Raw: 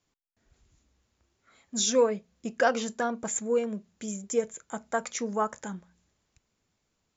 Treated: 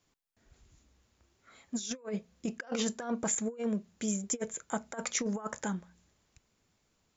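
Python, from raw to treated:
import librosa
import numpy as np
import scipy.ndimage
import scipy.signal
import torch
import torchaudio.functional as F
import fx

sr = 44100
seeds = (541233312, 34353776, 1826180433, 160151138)

y = fx.over_compress(x, sr, threshold_db=-32.0, ratio=-0.5)
y = F.gain(torch.from_numpy(y), -1.5).numpy()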